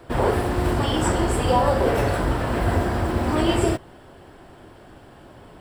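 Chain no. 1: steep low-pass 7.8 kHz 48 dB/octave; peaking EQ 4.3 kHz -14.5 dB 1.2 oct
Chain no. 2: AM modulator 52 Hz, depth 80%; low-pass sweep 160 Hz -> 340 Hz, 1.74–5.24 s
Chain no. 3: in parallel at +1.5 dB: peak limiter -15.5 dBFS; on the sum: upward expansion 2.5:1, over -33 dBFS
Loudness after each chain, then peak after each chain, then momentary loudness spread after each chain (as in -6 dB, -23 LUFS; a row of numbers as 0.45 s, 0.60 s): -22.5 LUFS, -27.5 LUFS, -21.0 LUFS; -7.0 dBFS, -9.5 dBFS, -4.0 dBFS; 4 LU, 3 LU, 6 LU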